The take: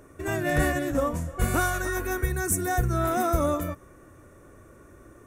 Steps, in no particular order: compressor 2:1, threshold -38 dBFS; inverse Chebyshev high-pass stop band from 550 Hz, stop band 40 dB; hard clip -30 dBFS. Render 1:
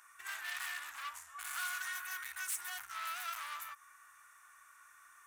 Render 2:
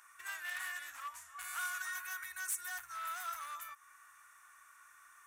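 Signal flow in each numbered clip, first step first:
hard clip > compressor > inverse Chebyshev high-pass; compressor > hard clip > inverse Chebyshev high-pass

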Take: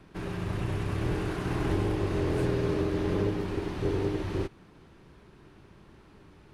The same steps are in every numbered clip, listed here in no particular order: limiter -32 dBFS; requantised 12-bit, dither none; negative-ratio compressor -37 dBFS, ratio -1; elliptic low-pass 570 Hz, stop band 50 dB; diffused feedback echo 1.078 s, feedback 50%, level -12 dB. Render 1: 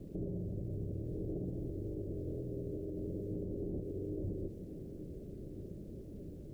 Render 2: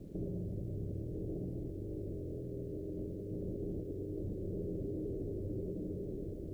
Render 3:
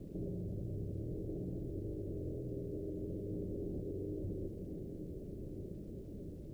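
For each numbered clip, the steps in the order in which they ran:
negative-ratio compressor > elliptic low-pass > requantised > limiter > diffused feedback echo; diffused feedback echo > negative-ratio compressor > elliptic low-pass > limiter > requantised; negative-ratio compressor > diffused feedback echo > limiter > elliptic low-pass > requantised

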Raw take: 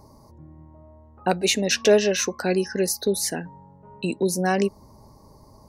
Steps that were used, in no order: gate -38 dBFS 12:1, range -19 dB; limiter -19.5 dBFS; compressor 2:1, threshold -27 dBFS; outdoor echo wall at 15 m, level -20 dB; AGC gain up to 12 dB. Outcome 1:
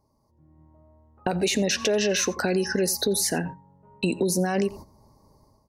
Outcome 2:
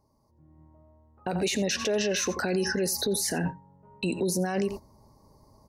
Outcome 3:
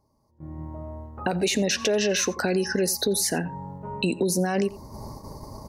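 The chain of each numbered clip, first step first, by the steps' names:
gate > limiter > AGC > outdoor echo > compressor; compressor > gate > outdoor echo > AGC > limiter; limiter > outdoor echo > AGC > compressor > gate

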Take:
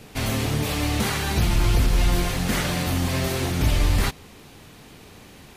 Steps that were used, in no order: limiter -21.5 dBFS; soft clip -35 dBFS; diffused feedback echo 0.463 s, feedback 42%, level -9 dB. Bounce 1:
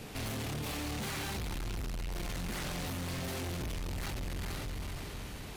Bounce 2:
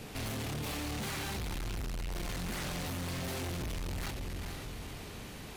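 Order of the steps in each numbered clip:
diffused feedback echo > limiter > soft clip; limiter > diffused feedback echo > soft clip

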